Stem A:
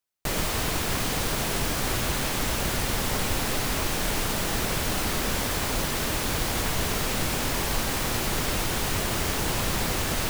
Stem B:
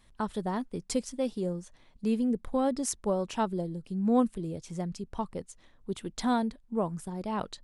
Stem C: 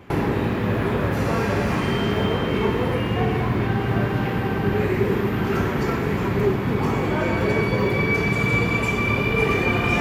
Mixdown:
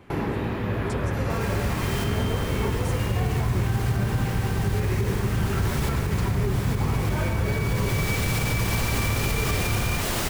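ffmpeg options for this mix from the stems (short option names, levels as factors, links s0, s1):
-filter_complex "[0:a]adelay=1050,volume=1.19,asplit=2[s0][s1];[s1]volume=0.188[s2];[1:a]alimiter=level_in=1.12:limit=0.0631:level=0:latency=1,volume=0.891,volume=0.473,asplit=2[s3][s4];[2:a]asubboost=boost=6:cutoff=110,volume=0.562[s5];[s4]apad=whole_len=500512[s6];[s0][s6]sidechaincompress=threshold=0.00141:ratio=4:attack=16:release=540[s7];[s2]aecho=0:1:106:1[s8];[s7][s3][s5][s8]amix=inputs=4:normalize=0,alimiter=limit=0.178:level=0:latency=1:release=56"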